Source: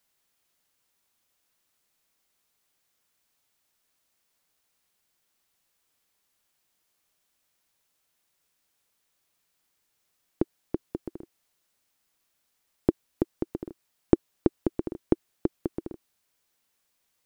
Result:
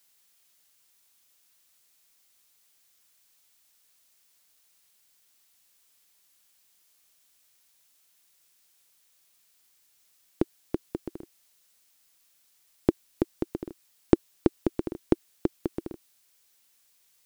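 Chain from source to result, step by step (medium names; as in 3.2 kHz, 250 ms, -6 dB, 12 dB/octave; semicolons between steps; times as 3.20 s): treble shelf 2.1 kHz +10.5 dB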